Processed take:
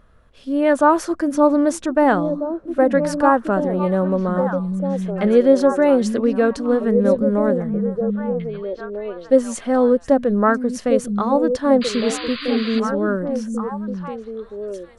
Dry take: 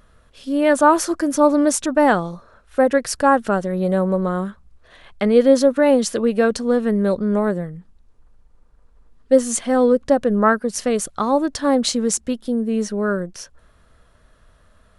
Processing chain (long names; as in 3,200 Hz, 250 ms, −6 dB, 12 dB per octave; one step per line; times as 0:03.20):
high-shelf EQ 3,300 Hz −10.5 dB
on a send: echo through a band-pass that steps 797 ms, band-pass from 160 Hz, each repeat 1.4 octaves, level −1.5 dB
on the sum: sound drawn into the spectrogram noise, 0:11.81–0:12.80, 1,000–4,900 Hz −32 dBFS